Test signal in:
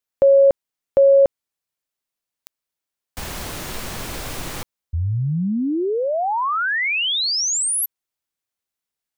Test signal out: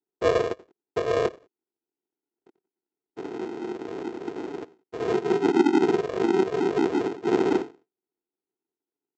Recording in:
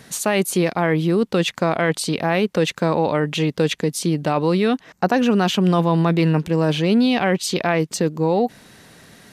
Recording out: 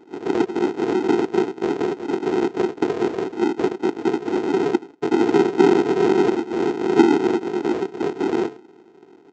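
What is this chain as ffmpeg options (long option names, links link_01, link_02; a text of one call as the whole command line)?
ffmpeg -i in.wav -af "flanger=delay=19.5:depth=3.7:speed=0.4,asuperstop=centerf=3800:order=4:qfactor=2.9,equalizer=frequency=4500:width_type=o:width=0.52:gain=5.5,aecho=1:1:90|180:0.112|0.0247,afftfilt=real='hypot(re,im)*cos(2*PI*random(0))':imag='hypot(re,im)*sin(2*PI*random(1))':win_size=512:overlap=0.75,apsyclip=11.5dB,aresample=16000,acrusher=samples=28:mix=1:aa=0.000001,aresample=44100,highpass=frequency=370:width_type=q:width=3.6,aemphasis=mode=reproduction:type=75fm,volume=-6dB" out.wav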